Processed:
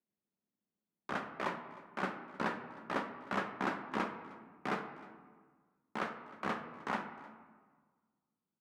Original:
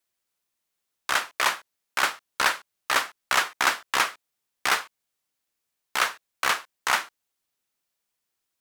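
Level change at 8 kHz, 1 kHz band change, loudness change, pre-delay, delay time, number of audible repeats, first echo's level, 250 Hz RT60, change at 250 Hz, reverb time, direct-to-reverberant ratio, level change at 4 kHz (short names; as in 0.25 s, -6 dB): -30.0 dB, -11.5 dB, -14.0 dB, 5 ms, 0.309 s, 1, -21.0 dB, 1.8 s, +5.5 dB, 1.5 s, 5.5 dB, -23.0 dB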